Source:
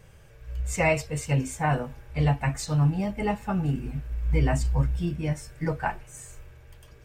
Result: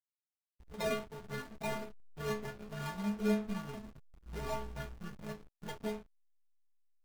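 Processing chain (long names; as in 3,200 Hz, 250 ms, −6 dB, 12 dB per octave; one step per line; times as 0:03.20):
sample-and-hold swept by an LFO 39×, swing 60% 3.5 Hz
stiff-string resonator 210 Hz, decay 0.66 s, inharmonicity 0.008
slack as between gear wheels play −45 dBFS
level +8 dB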